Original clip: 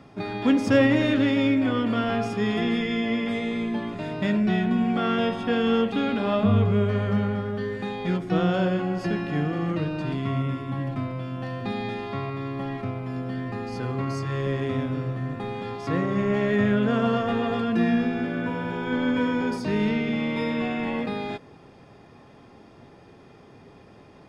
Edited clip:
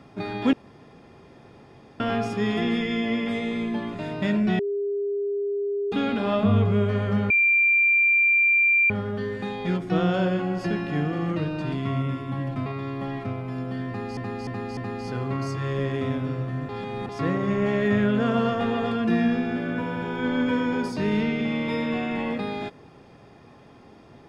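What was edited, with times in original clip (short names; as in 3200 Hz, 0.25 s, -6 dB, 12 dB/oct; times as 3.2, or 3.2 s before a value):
0.53–2 room tone
4.59–5.92 bleep 404 Hz -23.5 dBFS
7.3 add tone 2370 Hz -16 dBFS 1.60 s
11.06–12.24 cut
13.45–13.75 loop, 4 plays
15.37–15.77 reverse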